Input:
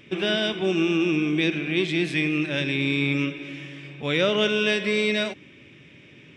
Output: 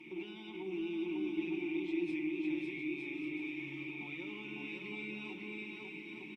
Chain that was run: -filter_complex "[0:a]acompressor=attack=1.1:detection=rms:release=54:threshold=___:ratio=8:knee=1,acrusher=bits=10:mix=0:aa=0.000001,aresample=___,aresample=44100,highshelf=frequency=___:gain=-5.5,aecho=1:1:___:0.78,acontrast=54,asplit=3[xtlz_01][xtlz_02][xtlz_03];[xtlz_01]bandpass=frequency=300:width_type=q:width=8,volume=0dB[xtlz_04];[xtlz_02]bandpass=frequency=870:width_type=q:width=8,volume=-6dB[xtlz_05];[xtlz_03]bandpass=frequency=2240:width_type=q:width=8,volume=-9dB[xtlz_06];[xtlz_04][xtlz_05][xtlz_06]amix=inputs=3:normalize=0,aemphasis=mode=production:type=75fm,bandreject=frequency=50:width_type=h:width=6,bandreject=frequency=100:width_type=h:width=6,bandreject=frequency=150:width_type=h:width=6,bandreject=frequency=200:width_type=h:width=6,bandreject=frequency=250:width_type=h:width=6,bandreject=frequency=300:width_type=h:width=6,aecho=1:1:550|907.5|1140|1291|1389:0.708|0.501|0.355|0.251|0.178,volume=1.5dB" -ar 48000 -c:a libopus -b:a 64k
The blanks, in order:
-38dB, 32000, 3900, 5.5